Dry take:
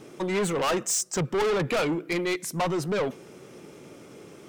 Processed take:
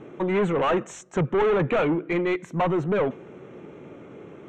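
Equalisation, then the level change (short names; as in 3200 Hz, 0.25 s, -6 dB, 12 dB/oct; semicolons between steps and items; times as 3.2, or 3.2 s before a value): running mean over 9 samples; air absorption 78 m; +4.0 dB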